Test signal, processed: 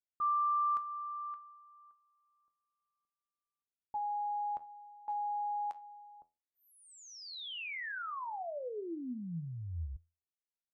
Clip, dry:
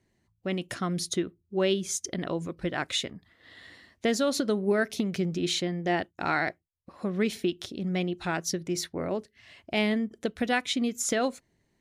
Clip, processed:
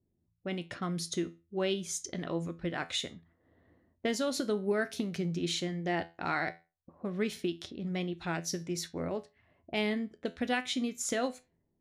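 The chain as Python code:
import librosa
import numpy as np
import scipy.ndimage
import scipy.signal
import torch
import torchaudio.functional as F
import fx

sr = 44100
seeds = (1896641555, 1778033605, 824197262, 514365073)

y = fx.comb_fb(x, sr, f0_hz=84.0, decay_s=0.29, harmonics='all', damping=0.0, mix_pct=60)
y = fx.env_lowpass(y, sr, base_hz=420.0, full_db=-32.5)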